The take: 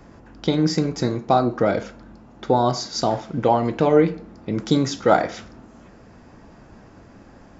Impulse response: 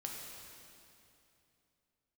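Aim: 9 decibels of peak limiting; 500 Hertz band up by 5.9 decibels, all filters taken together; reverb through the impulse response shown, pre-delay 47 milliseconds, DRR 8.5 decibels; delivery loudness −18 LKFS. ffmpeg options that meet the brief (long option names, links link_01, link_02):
-filter_complex "[0:a]equalizer=frequency=500:width_type=o:gain=7,alimiter=limit=-8dB:level=0:latency=1,asplit=2[link_01][link_02];[1:a]atrim=start_sample=2205,adelay=47[link_03];[link_02][link_03]afir=irnorm=-1:irlink=0,volume=-8dB[link_04];[link_01][link_04]amix=inputs=2:normalize=0,volume=2.5dB"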